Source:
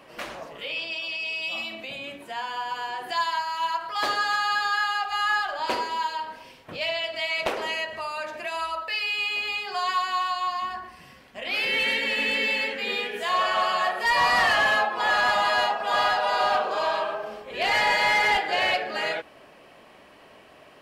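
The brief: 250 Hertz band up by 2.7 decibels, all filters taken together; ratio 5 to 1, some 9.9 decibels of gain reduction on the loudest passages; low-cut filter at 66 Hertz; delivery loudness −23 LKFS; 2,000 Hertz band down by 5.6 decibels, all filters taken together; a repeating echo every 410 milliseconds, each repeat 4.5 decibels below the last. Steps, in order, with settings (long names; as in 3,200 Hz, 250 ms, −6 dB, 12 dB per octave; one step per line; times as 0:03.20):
high-pass filter 66 Hz
parametric band 250 Hz +3.5 dB
parametric band 2,000 Hz −7 dB
downward compressor 5 to 1, threshold −32 dBFS
repeating echo 410 ms, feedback 60%, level −4.5 dB
level +9.5 dB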